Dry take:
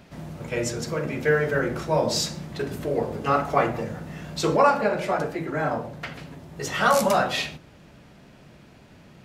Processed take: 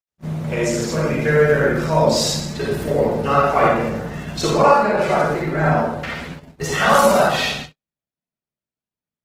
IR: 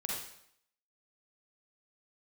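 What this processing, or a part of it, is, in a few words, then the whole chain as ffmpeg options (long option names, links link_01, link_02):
speakerphone in a meeting room: -filter_complex "[0:a]asettb=1/sr,asplit=3[link_01][link_02][link_03];[link_01]atrim=end=5.534[link_04];[link_02]atrim=start=5.53:end=6.91,asetpts=PTS-STARTPTS,afade=type=in:duration=0.004:curve=qsin,afade=type=out:start_time=1.376:duration=0.004:curve=qsin,asplit=2[link_05][link_06];[link_06]adelay=12,volume=-6dB[link_07];[link_05][link_07]amix=inputs=2:normalize=0,atrim=end_sample=60858[link_08];[link_03]atrim=start=6.906[link_09];[link_04][link_08]acrossfade=duration=0.004:curve1=hsin:curve2=qsin[link_10];[link_10][link_09]acrossfade=duration=0.004:curve1=qsin:curve2=hsin[link_11];[1:a]atrim=start_sample=2205[link_12];[link_11][link_12]afir=irnorm=-1:irlink=0,dynaudnorm=framelen=130:gausssize=3:maxgain=5.5dB,agate=range=-54dB:threshold=-30dB:ratio=16:detection=peak" -ar 48000 -c:a libopus -b:a 16k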